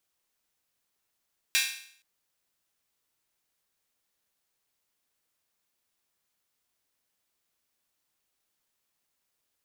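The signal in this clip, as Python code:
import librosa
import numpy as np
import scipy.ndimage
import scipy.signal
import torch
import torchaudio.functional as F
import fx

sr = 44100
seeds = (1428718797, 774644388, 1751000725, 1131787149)

y = fx.drum_hat_open(sr, length_s=0.47, from_hz=2200.0, decay_s=0.59)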